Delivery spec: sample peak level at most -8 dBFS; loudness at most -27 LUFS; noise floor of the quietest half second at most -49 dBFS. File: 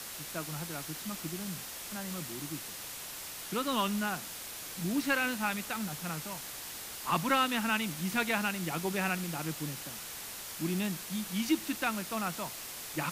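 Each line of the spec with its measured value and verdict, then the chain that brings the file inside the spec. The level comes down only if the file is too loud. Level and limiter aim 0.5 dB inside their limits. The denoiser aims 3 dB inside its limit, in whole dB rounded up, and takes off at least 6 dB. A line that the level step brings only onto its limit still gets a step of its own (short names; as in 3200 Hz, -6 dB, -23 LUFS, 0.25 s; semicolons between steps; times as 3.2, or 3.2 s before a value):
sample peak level -14.0 dBFS: OK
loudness -34.0 LUFS: OK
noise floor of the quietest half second -43 dBFS: fail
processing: denoiser 9 dB, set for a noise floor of -43 dBFS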